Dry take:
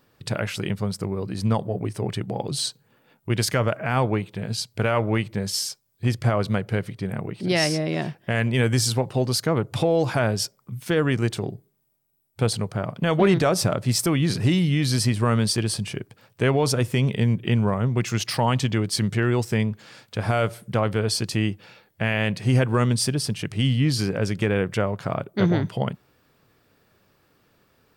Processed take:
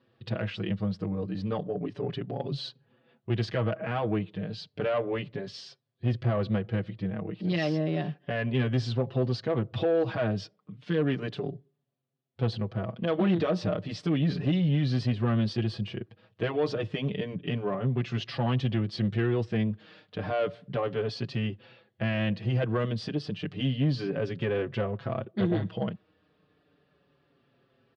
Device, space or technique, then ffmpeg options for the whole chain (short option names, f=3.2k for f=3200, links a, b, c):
barber-pole flanger into a guitar amplifier: -filter_complex "[0:a]asplit=2[a][b];[b]adelay=5.6,afreqshift=-0.32[c];[a][c]amix=inputs=2:normalize=1,asoftclip=type=tanh:threshold=-18dB,highpass=100,equalizer=f=910:t=q:w=4:g=-7,equalizer=f=1.4k:t=q:w=4:g=-5,equalizer=f=2.2k:t=q:w=4:g=-7,lowpass=f=3.6k:w=0.5412,lowpass=f=3.6k:w=1.3066"